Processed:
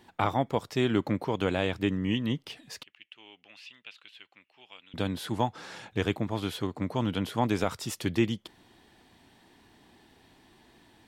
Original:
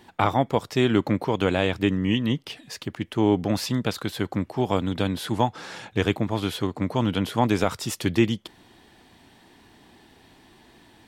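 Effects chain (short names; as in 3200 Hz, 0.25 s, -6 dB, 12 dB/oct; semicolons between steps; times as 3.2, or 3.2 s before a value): 2.83–4.94 band-pass 2700 Hz, Q 5.2; gain -5.5 dB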